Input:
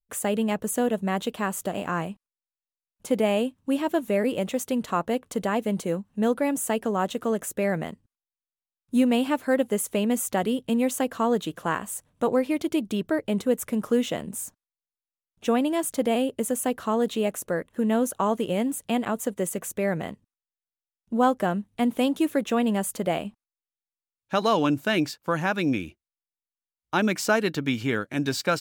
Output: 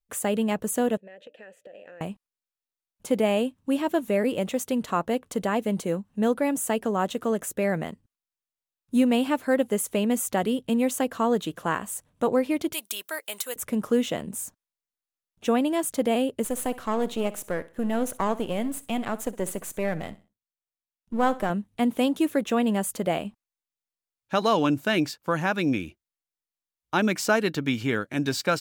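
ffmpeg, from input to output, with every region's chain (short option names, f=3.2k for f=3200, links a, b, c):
-filter_complex "[0:a]asettb=1/sr,asplit=3[a][b][c];[a]atrim=end=0.974[d];[b]atrim=start=0.97:end=2.01,asetpts=PTS-STARTPTS,afade=t=in:d=0.004:c=qsin,afade=t=out:st=1.036:d=0.004:c=qsin,asplit=3[e][f][g];[e]bandpass=f=530:t=q:w=8,volume=0dB[h];[f]bandpass=f=1.84k:t=q:w=8,volume=-6dB[i];[g]bandpass=f=2.48k:t=q:w=8,volume=-9dB[j];[h][i][j]amix=inputs=3:normalize=0,acompressor=threshold=-41dB:ratio=10:attack=3.2:release=140:knee=1:detection=peak,bandreject=f=295.8:t=h:w=4,bandreject=f=591.6:t=h:w=4[k];[c]atrim=start=2.006[l];[d][k]acrossfade=d=0.004:c1=hsin:c2=qsin[m];[m][l]acrossfade=d=0.004:c1=qsin:c2=hsin,asettb=1/sr,asplit=3[n][o][p];[n]atrim=end=12.734[q];[o]atrim=start=12.73:end=13.56,asetpts=PTS-STARTPTS,afade=t=in:d=0.004:c=qsin,afade=t=out:st=0.826:d=0.004:c=qsin,highpass=980,aemphasis=mode=production:type=75fm[r];[p]atrim=start=13.556[s];[q][r]acrossfade=d=0.004:c1=hsin:c2=qsin[t];[t][s]acrossfade=d=0.004:c1=qsin:c2=hsin,asettb=1/sr,asplit=3[u][v][w];[u]atrim=end=16.444[x];[v]atrim=start=16.44:end=21.5,asetpts=PTS-STARTPTS,afade=t=in:d=0.004:c=qsin,afade=t=out:st=5.056:d=0.004:c=qsin,aeval=exprs='if(lt(val(0),0),0.447*val(0),val(0))':c=same,aecho=1:1:62|124|186:0.133|0.04|0.012,atrim=end_sample=223146[y];[w]atrim=start=21.496[z];[x][y]acrossfade=d=0.004:c1=hsin:c2=qsin[aa];[aa][z]acrossfade=d=0.004:c1=qsin:c2=hsin"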